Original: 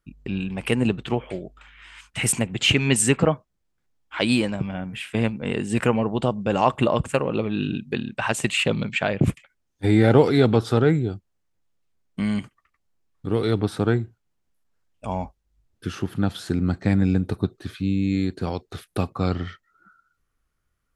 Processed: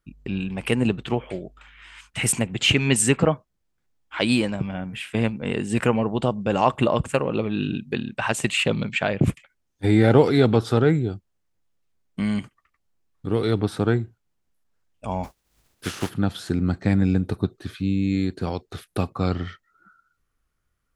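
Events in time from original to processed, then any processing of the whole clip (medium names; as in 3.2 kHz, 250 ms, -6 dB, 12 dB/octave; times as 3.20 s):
15.23–16.09 s: spectral contrast reduction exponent 0.52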